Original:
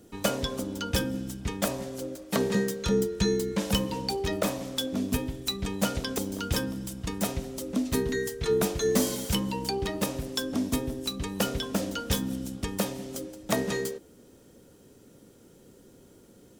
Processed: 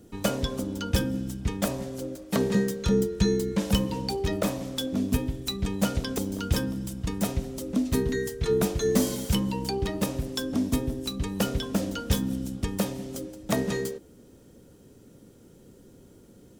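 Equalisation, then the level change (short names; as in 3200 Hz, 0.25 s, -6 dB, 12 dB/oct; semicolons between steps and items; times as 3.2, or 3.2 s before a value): low shelf 280 Hz +7 dB; -1.5 dB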